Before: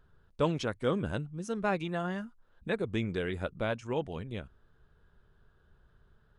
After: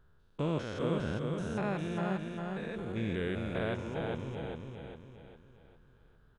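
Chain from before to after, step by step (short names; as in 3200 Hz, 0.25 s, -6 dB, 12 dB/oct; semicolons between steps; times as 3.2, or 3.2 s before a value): stepped spectrum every 0.2 s; feedback echo 0.405 s, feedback 42%, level -4 dB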